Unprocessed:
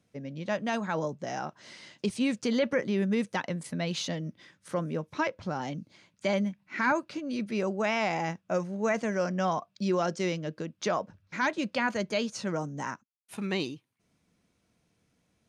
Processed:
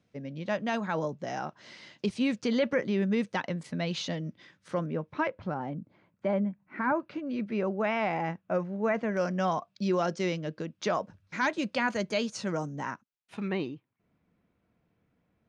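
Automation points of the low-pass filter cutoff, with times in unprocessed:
5,300 Hz
from 0:04.86 2,500 Hz
from 0:05.54 1,300 Hz
from 0:07.00 2,400 Hz
from 0:09.17 5,800 Hz
from 0:10.95 9,600 Hz
from 0:12.76 4,200 Hz
from 0:13.48 2,000 Hz

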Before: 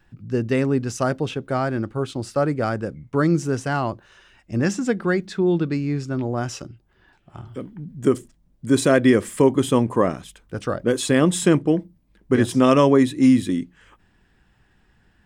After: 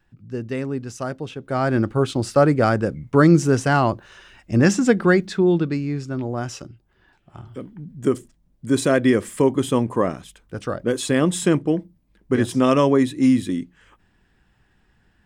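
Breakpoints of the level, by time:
0:01.35 −6 dB
0:01.75 +5.5 dB
0:05.07 +5.5 dB
0:05.92 −1.5 dB

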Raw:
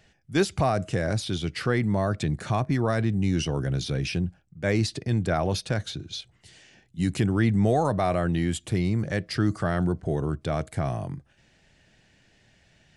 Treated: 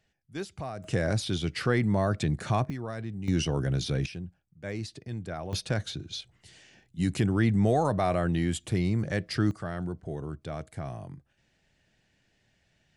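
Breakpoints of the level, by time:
−13.5 dB
from 0:00.84 −1 dB
from 0:02.70 −11.5 dB
from 0:03.28 −1 dB
from 0:04.06 −11.5 dB
from 0:05.53 −2 dB
from 0:09.51 −9 dB

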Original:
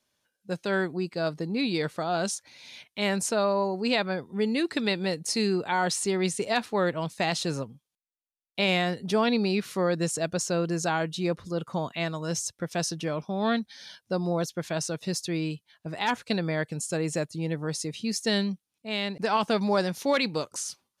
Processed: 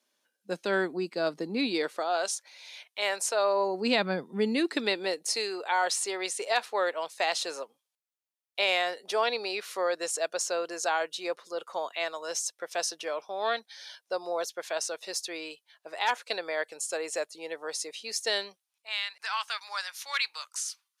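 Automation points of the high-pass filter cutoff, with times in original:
high-pass filter 24 dB per octave
0:01.59 230 Hz
0:02.28 500 Hz
0:03.33 500 Hz
0:04.08 150 Hz
0:05.50 470 Hz
0:18.47 470 Hz
0:19.06 1,200 Hz

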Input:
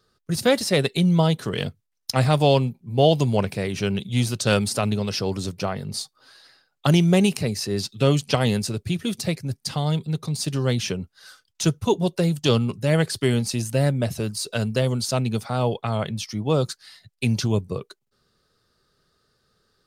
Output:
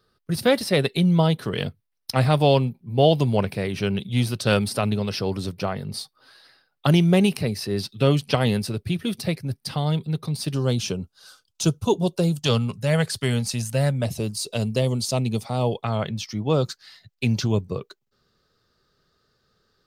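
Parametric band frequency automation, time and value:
parametric band −12 dB 0.48 octaves
7,000 Hz
from 0:10.54 1,900 Hz
from 0:12.42 330 Hz
from 0:14.05 1,500 Hz
from 0:15.84 9,700 Hz

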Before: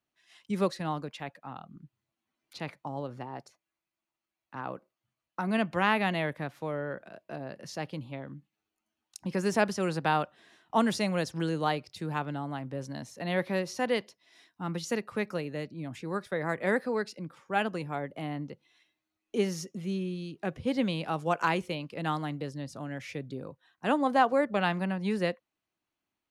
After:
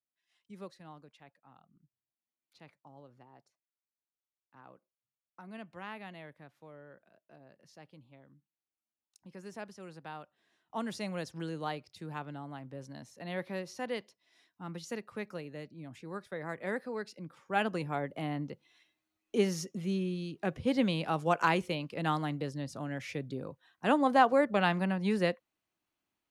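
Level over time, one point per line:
0:10.22 −18 dB
0:11.08 −8 dB
0:16.92 −8 dB
0:17.76 0 dB

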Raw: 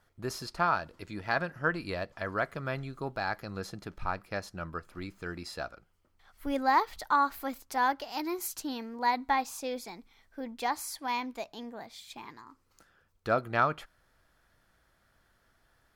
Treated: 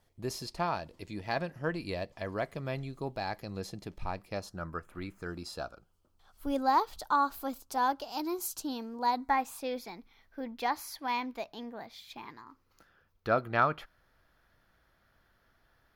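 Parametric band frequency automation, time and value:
parametric band −12.5 dB 0.6 octaves
0:04.30 1,400 Hz
0:05.05 6,700 Hz
0:05.31 2,000 Hz
0:09.12 2,000 Hz
0:09.67 8,200 Hz

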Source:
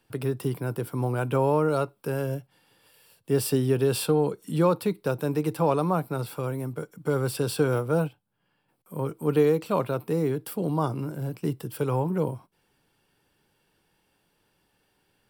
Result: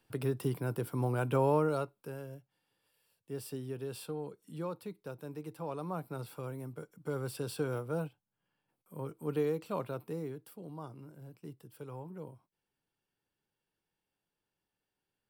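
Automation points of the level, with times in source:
0:01.57 −5 dB
0:02.30 −17 dB
0:05.65 −17 dB
0:06.09 −11 dB
0:10.01 −11 dB
0:10.59 −19 dB

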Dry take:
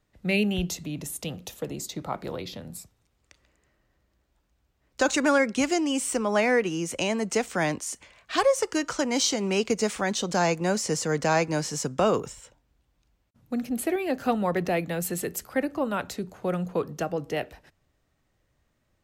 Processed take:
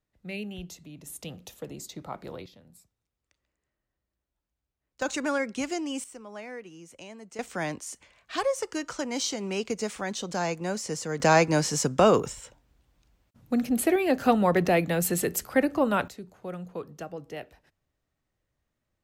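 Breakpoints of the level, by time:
−12 dB
from 0:01.07 −6 dB
from 0:02.46 −15.5 dB
from 0:05.02 −6.5 dB
from 0:06.04 −18 dB
from 0:07.39 −5.5 dB
from 0:11.20 +3.5 dB
from 0:16.08 −9 dB

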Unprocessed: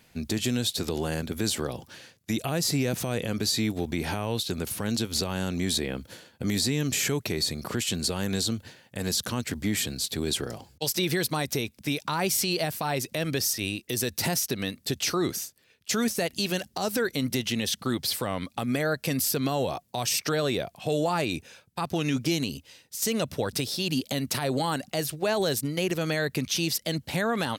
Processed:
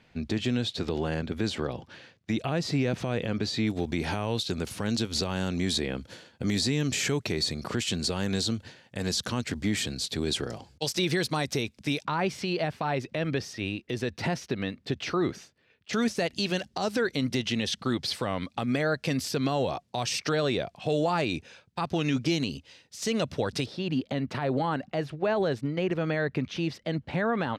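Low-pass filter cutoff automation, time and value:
3,500 Hz
from 0:03.67 6,600 Hz
from 0:12.05 2,700 Hz
from 0:15.93 5,200 Hz
from 0:23.66 2,100 Hz

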